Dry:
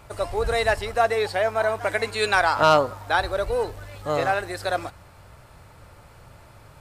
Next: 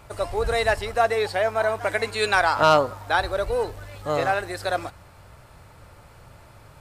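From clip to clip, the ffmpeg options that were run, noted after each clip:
-af anull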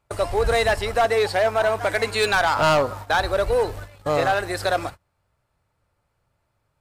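-filter_complex "[0:a]agate=range=-29dB:threshold=-37dB:ratio=16:detection=peak,asplit=2[a][b];[b]alimiter=limit=-18.5dB:level=0:latency=1:release=262,volume=-0.5dB[c];[a][c]amix=inputs=2:normalize=0,asoftclip=type=hard:threshold=-13.5dB"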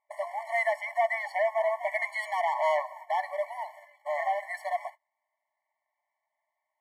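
-af "aeval=exprs='if(lt(val(0),0),0.708*val(0),val(0))':c=same,highshelf=f=2.9k:t=q:w=3:g=-8,afftfilt=real='re*eq(mod(floor(b*sr/1024/580),2),1)':imag='im*eq(mod(floor(b*sr/1024/580),2),1)':win_size=1024:overlap=0.75,volume=-5dB"

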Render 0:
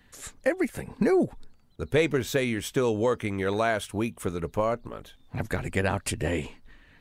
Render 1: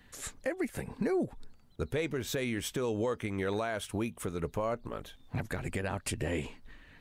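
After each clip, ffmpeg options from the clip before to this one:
-af "alimiter=limit=-23dB:level=0:latency=1:release=271"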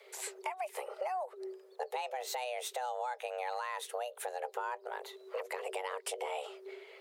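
-af "acompressor=threshold=-40dB:ratio=2.5,afreqshift=370,volume=2dB"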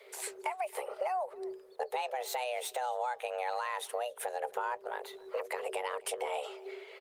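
-filter_complex "[0:a]asplit=2[a][b];[b]adelay=268.2,volume=-22dB,highshelf=f=4k:g=-6.04[c];[a][c]amix=inputs=2:normalize=0,volume=3dB" -ar 48000 -c:a libopus -b:a 32k

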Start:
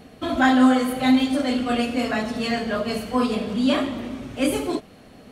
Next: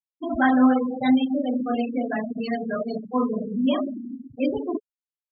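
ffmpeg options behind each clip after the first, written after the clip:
-af "afftfilt=real='re*gte(hypot(re,im),0.141)':imag='im*gte(hypot(re,im),0.141)':win_size=1024:overlap=0.75,highshelf=f=5.7k:g=-8.5,volume=-1.5dB"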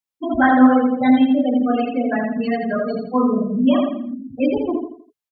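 -filter_complex "[0:a]acrossover=split=2900[a][b];[b]acompressor=threshold=-47dB:ratio=4:attack=1:release=60[c];[a][c]amix=inputs=2:normalize=0,bandreject=f=60:t=h:w=6,bandreject=f=120:t=h:w=6,aecho=1:1:83|166|249|332:0.531|0.191|0.0688|0.0248,volume=5dB"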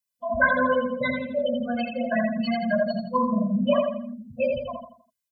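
-af "highshelf=f=3.9k:g=9,afftfilt=real='re*eq(mod(floor(b*sr/1024/240),2),0)':imag='im*eq(mod(floor(b*sr/1024/240),2),0)':win_size=1024:overlap=0.75"

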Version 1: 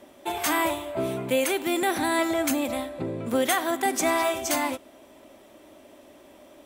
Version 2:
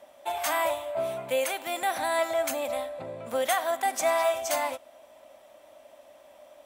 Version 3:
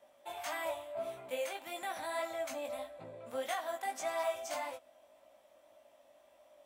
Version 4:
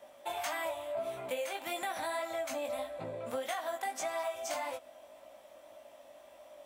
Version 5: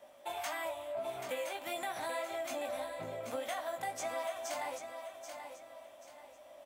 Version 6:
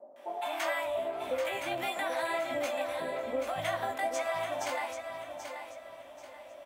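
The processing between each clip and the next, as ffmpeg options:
-af "lowshelf=f=470:t=q:w=3:g=-7.5,volume=-4dB"
-filter_complex "[0:a]acrossover=split=740|7600[a][b][c];[c]alimiter=level_in=8.5dB:limit=-24dB:level=0:latency=1:release=245,volume=-8.5dB[d];[a][b][d]amix=inputs=3:normalize=0,flanger=delay=17.5:depth=3.5:speed=1.7,volume=-7.5dB"
-af "acompressor=threshold=-42dB:ratio=6,volume=8.5dB"
-af "aecho=1:1:784|1568|2352|3136:0.398|0.131|0.0434|0.0143,volume=-2.5dB"
-filter_complex "[0:a]bass=f=250:g=0,treble=f=4k:g=-8,acrossover=split=190|800[a][b][c];[c]adelay=160[d];[a]adelay=560[e];[e][b][d]amix=inputs=3:normalize=0,volume=8dB"

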